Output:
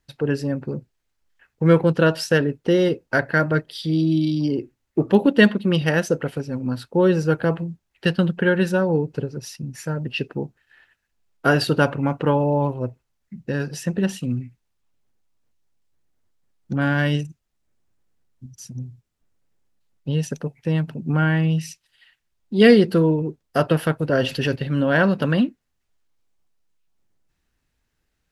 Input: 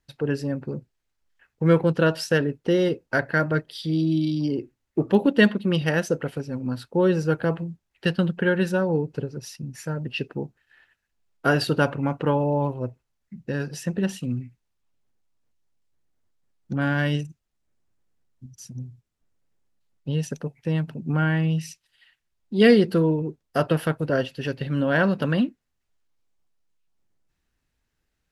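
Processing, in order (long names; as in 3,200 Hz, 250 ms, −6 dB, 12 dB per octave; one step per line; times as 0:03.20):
0:24.13–0:24.56: envelope flattener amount 50%
level +3 dB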